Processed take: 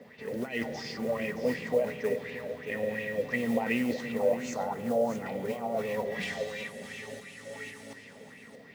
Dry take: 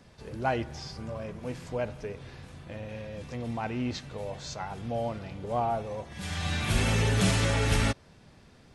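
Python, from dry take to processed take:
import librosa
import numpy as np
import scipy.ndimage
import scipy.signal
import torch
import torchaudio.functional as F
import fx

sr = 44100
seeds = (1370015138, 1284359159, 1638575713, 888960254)

p1 = scipy.signal.sosfilt(scipy.signal.butter(2, 100.0, 'highpass', fs=sr, output='sos'), x)
p2 = F.preemphasis(torch.from_numpy(p1), 0.9).numpy()
p3 = fx.env_lowpass(p2, sr, base_hz=2600.0, full_db=-35.5)
p4 = fx.band_shelf(p3, sr, hz=3100.0, db=-14.5, octaves=1.7, at=(4.12, 5.26))
p5 = fx.over_compress(p4, sr, threshold_db=-51.0, ratio=-1.0)
p6 = fx.small_body(p5, sr, hz=(240.0, 440.0, 1900.0), ring_ms=30, db=18)
p7 = fx.mod_noise(p6, sr, seeds[0], snr_db=22)
p8 = p7 + fx.echo_single(p7, sr, ms=624, db=-9.5, dry=0)
p9 = fx.rev_spring(p8, sr, rt60_s=3.5, pass_ms=(47,), chirp_ms=50, drr_db=11.0)
p10 = fx.bell_lfo(p9, sr, hz=2.8, low_hz=530.0, high_hz=2700.0, db=13)
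y = p10 * librosa.db_to_amplitude(2.0)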